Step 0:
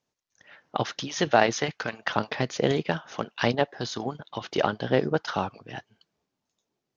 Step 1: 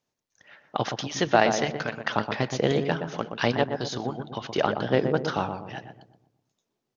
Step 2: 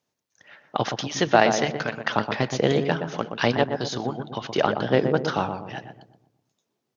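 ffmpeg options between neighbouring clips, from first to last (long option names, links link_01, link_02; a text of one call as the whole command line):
ffmpeg -i in.wav -filter_complex "[0:a]asplit=2[link_01][link_02];[link_02]adelay=122,lowpass=frequency=950:poles=1,volume=-5dB,asplit=2[link_03][link_04];[link_04]adelay=122,lowpass=frequency=950:poles=1,volume=0.48,asplit=2[link_05][link_06];[link_06]adelay=122,lowpass=frequency=950:poles=1,volume=0.48,asplit=2[link_07][link_08];[link_08]adelay=122,lowpass=frequency=950:poles=1,volume=0.48,asplit=2[link_09][link_10];[link_10]adelay=122,lowpass=frequency=950:poles=1,volume=0.48,asplit=2[link_11][link_12];[link_12]adelay=122,lowpass=frequency=950:poles=1,volume=0.48[link_13];[link_01][link_03][link_05][link_07][link_09][link_11][link_13]amix=inputs=7:normalize=0" out.wav
ffmpeg -i in.wav -af "highpass=77,volume=2.5dB" out.wav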